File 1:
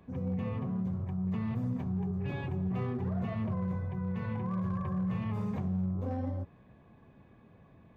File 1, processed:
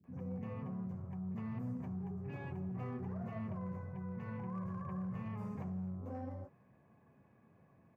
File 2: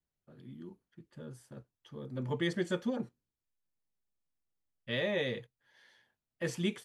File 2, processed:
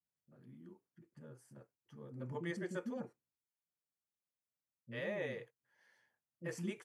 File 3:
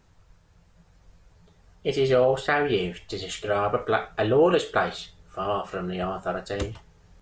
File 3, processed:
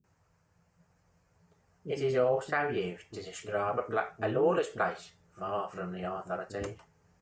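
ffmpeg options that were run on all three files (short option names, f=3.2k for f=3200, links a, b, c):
-filter_complex "[0:a]highpass=110,equalizer=f=3.6k:t=o:w=0.58:g=-12.5,acrossover=split=310[a][b];[b]adelay=40[c];[a][c]amix=inputs=2:normalize=0,volume=-6dB"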